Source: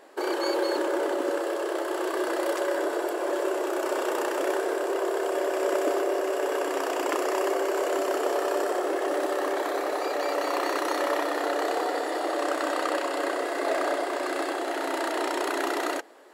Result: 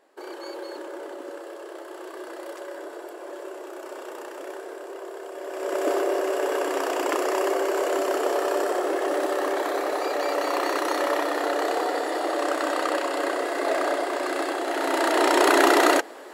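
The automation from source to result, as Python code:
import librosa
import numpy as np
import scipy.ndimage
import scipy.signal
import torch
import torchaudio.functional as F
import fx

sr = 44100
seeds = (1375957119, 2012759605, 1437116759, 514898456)

y = fx.gain(x, sr, db=fx.line((5.36, -10.0), (5.9, 2.0), (14.63, 2.0), (15.49, 10.5)))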